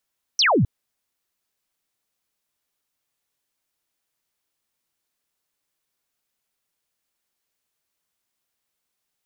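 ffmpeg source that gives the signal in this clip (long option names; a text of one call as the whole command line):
ffmpeg -f lavfi -i "aevalsrc='0.188*clip(t/0.002,0,1)*clip((0.26-t)/0.002,0,1)*sin(2*PI*6100*0.26/log(89/6100)*(exp(log(89/6100)*t/0.26)-1))':duration=0.26:sample_rate=44100" out.wav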